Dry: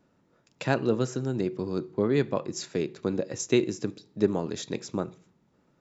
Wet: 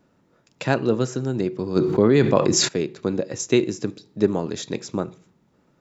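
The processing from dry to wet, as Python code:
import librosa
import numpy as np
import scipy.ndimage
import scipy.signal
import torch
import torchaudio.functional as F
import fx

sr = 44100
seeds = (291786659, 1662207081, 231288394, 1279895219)

y = fx.env_flatten(x, sr, amount_pct=70, at=(1.75, 2.67), fade=0.02)
y = F.gain(torch.from_numpy(y), 4.5).numpy()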